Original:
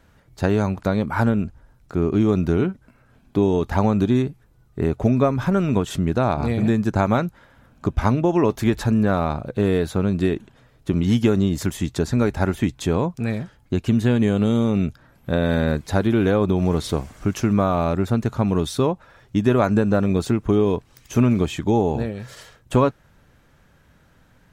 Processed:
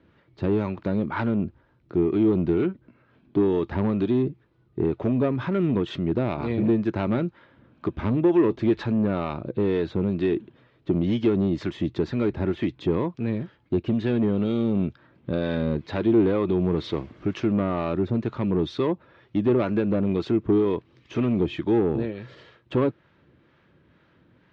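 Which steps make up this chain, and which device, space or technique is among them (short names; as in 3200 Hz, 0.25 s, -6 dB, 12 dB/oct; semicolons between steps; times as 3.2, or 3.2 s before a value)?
guitar amplifier with harmonic tremolo (harmonic tremolo 2.1 Hz, depth 50%, crossover 560 Hz; soft clip -17.5 dBFS, distortion -13 dB; speaker cabinet 100–3800 Hz, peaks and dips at 340 Hz +9 dB, 760 Hz -6 dB, 1500 Hz -3 dB)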